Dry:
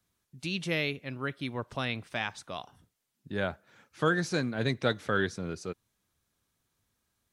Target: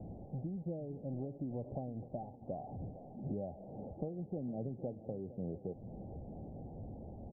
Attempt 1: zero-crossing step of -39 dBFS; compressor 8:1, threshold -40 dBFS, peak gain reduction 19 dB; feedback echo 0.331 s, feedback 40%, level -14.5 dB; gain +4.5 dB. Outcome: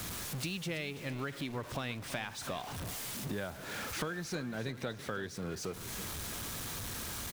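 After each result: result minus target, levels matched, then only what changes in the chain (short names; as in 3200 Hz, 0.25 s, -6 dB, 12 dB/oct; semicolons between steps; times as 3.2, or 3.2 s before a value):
echo 0.128 s early; 1000 Hz band +2.5 dB
change: feedback echo 0.459 s, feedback 40%, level -14.5 dB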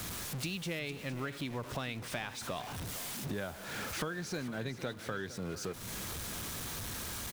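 1000 Hz band +2.5 dB
add after compressor: rippled Chebyshev low-pass 810 Hz, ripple 3 dB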